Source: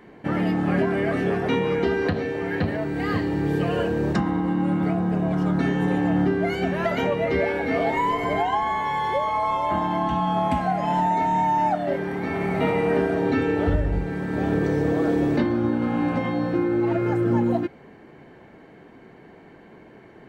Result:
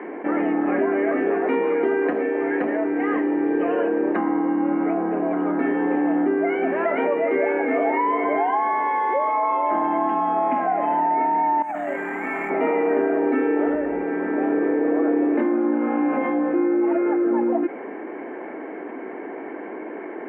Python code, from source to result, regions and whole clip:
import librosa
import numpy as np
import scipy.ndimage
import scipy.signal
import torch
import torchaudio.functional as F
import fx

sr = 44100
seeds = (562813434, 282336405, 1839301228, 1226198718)

y = fx.chain(x, sr, fx.peak_eq(hz=410.0, db=-14.5, octaves=2.0),
    fx.over_compress(threshold_db=-32.0, ratio=-0.5),
    fx.resample_bad(factor=6, down='filtered', up='zero_stuff'), at=(11.62, 12.5))
y = scipy.signal.sosfilt(scipy.signal.ellip(3, 1.0, 40, [290.0, 2300.0], 'bandpass', fs=sr, output='sos'), y)
y = fx.tilt_eq(y, sr, slope=-1.5)
y = fx.env_flatten(y, sr, amount_pct=50)